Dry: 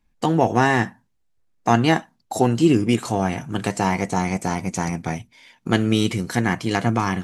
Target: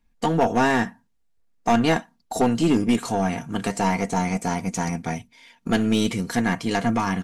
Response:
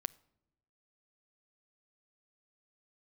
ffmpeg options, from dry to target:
-af "aecho=1:1:4.3:0.41,aeval=exprs='clip(val(0),-1,0.237)':c=same,aeval=exprs='0.891*(cos(1*acos(clip(val(0)/0.891,-1,1)))-cos(1*PI/2))+0.355*(cos(2*acos(clip(val(0)/0.891,-1,1)))-cos(2*PI/2))':c=same,volume=-1.5dB"

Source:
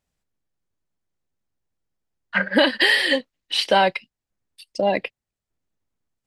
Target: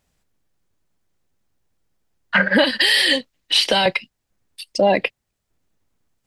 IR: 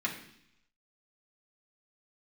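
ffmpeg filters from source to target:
-filter_complex "[0:a]asettb=1/sr,asplit=3[a][b][c];[a]atrim=end=2.644[d];[b]atrim=start=2.64:end=3.86,asetpts=PTS-STARTPTS,afade=t=in:d=0.004:c=qsin,afade=t=out:st=1.216:d=0.004:c=qsin,acrossover=split=140|3000[e][f][g];[f]acompressor=threshold=-28dB:ratio=6[h];[e][h][g]amix=inputs=3:normalize=0[i];[c]atrim=start=3.856[j];[d][i]acrossfade=d=0.004:c1=hsin:c2=qsin[k];[k][j]acrossfade=d=0.004:c1=qsin:c2=hsin,alimiter=level_in=15dB:limit=-1dB:release=50:level=0:latency=1,volume=-5dB"

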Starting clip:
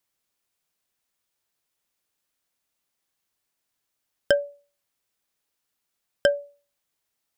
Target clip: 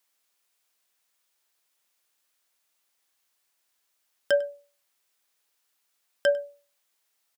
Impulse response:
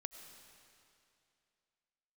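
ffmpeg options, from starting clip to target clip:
-filter_complex "[0:a]highpass=f=660:p=1,alimiter=limit=-18.5dB:level=0:latency=1:release=35,asplit=2[a][b];[b]adelay=99.13,volume=-21dB,highshelf=f=4k:g=-2.23[c];[a][c]amix=inputs=2:normalize=0,volume=5.5dB"

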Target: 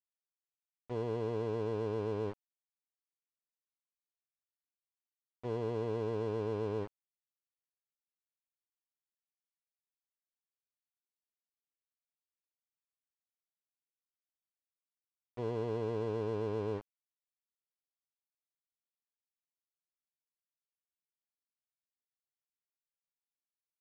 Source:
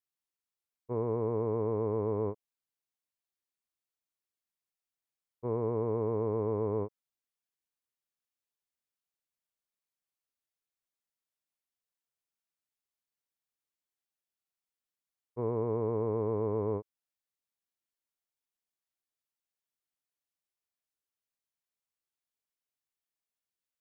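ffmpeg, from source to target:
-af "aeval=exprs='val(0)*gte(abs(val(0)),0.0119)':c=same,adynamicsmooth=sensitivity=6:basefreq=1.7k,volume=-4dB"

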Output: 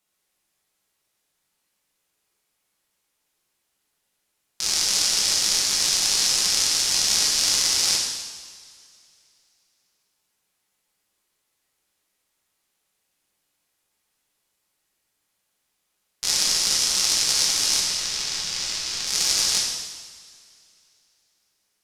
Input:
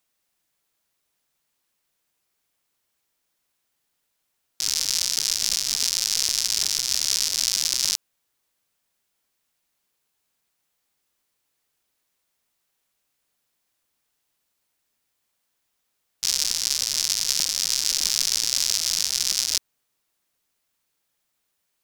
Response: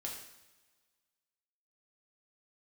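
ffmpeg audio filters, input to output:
-filter_complex "[0:a]asettb=1/sr,asplit=3[a][b][c];[a]atrim=end=17.804[d];[b]atrim=start=17.8:end=19.07,asetpts=PTS-STARTPTS,afade=t=in:d=0.004:c=qsin,afade=t=out:st=1.266:d=0.004:c=qsin,lowpass=f=2.4k:p=1[e];[c]atrim=start=19.066[f];[d][e]acrossfade=d=0.004:c1=hsin:c2=qsin[g];[g][f]acrossfade=d=0.004:c1=qsin:c2=hsin,aeval=exprs='0.841*(cos(1*acos(clip(val(0)/0.841,-1,1)))-cos(1*PI/2))+0.0422*(cos(4*acos(clip(val(0)/0.841,-1,1)))-cos(4*PI/2))':c=same[h];[1:a]atrim=start_sample=2205,asetrate=26901,aresample=44100[i];[h][i]afir=irnorm=-1:irlink=0"

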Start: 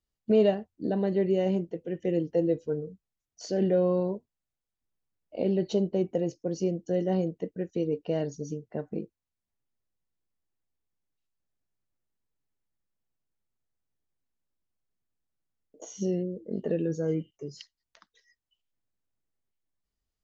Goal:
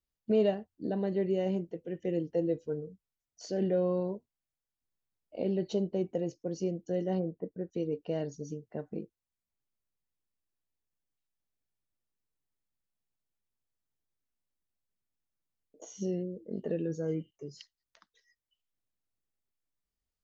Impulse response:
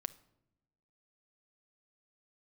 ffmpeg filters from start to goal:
-filter_complex "[0:a]asplit=3[a][b][c];[a]afade=t=out:st=7.18:d=0.02[d];[b]lowpass=f=1.5k:w=0.5412,lowpass=f=1.5k:w=1.3066,afade=t=in:st=7.18:d=0.02,afade=t=out:st=7.7:d=0.02[e];[c]afade=t=in:st=7.7:d=0.02[f];[d][e][f]amix=inputs=3:normalize=0,volume=-4.5dB"

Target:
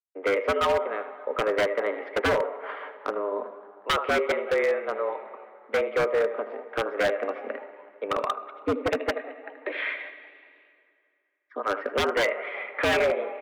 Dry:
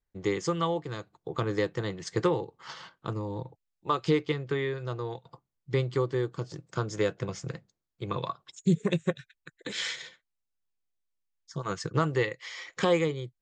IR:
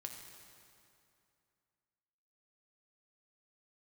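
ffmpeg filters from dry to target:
-filter_complex "[0:a]agate=range=-33dB:threshold=-48dB:ratio=3:detection=peak,highpass=f=250:t=q:w=0.5412,highpass=f=250:t=q:w=1.307,lowpass=f=2.4k:t=q:w=0.5176,lowpass=f=2.4k:t=q:w=0.7071,lowpass=f=2.4k:t=q:w=1.932,afreqshift=94,asplit=5[a][b][c][d][e];[b]adelay=190,afreqshift=98,volume=-22dB[f];[c]adelay=380,afreqshift=196,volume=-26.9dB[g];[d]adelay=570,afreqshift=294,volume=-31.8dB[h];[e]adelay=760,afreqshift=392,volume=-36.6dB[i];[a][f][g][h][i]amix=inputs=5:normalize=0,asplit=2[j][k];[1:a]atrim=start_sample=2205,lowpass=7k,adelay=78[l];[k][l]afir=irnorm=-1:irlink=0,volume=-6.5dB[m];[j][m]amix=inputs=2:normalize=0,aeval=exprs='0.0596*(abs(mod(val(0)/0.0596+3,4)-2)-1)':c=same,volume=7.5dB"

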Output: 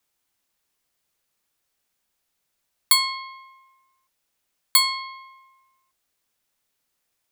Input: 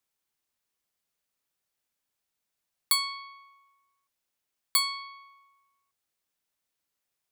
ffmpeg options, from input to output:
-af "afreqshift=-50,volume=7.5dB"

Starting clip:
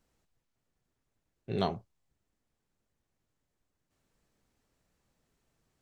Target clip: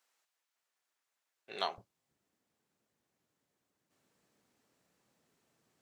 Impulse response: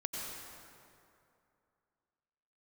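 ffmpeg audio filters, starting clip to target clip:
-af "asetnsamples=n=441:p=0,asendcmd='1.78 highpass f 170',highpass=970,volume=2.5dB"

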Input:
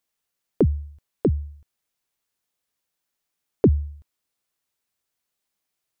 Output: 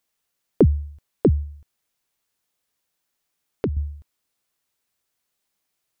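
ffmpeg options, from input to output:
-filter_complex "[0:a]asettb=1/sr,asplit=3[a][b][c];[a]atrim=end=1.434[d];[b]atrim=start=1.43:end=3.77,asetpts=PTS-STARTPTS,afade=t=in:d=0.004:c=qsin,afade=t=out:st=2.336:d=0.004:c=qsin,acompressor=threshold=-35dB:ratio=2[e];[c]atrim=start=3.766[f];[d][e]acrossfade=d=0.004:c1=hsin:c2=qsin[g];[g][f]acrossfade=d=0.004:c1=qsin:c2=hsin,volume=3.5dB"

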